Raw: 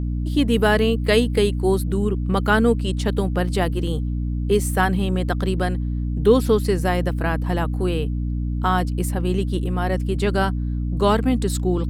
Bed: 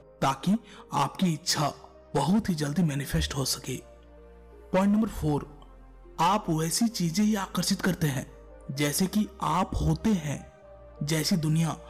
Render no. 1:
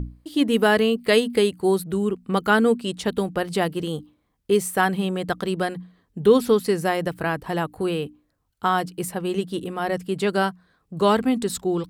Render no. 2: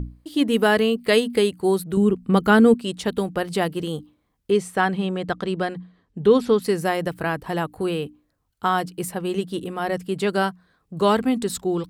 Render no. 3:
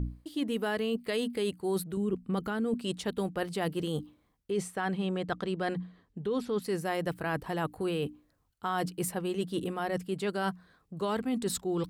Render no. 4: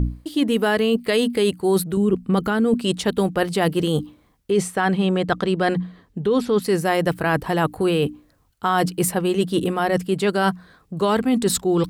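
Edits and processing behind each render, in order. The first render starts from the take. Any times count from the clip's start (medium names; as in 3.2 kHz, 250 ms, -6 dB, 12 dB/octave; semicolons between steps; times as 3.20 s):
hum notches 60/120/180/240/300 Hz
1.97–2.74 s: bass shelf 330 Hz +9 dB; 4.51–6.62 s: distance through air 67 m
peak limiter -11.5 dBFS, peak gain reduction 9 dB; reverse; compression 5:1, threshold -29 dBFS, peak gain reduction 12.5 dB; reverse
trim +12 dB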